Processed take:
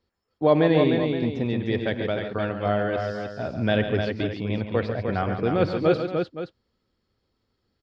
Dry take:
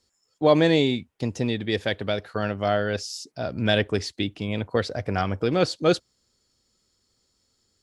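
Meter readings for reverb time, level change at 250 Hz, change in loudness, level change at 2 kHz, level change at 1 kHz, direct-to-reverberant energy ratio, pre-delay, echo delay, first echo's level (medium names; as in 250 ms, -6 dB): no reverb, +1.0 dB, 0.0 dB, -1.5 dB, 0.0 dB, no reverb, no reverb, 51 ms, -19.5 dB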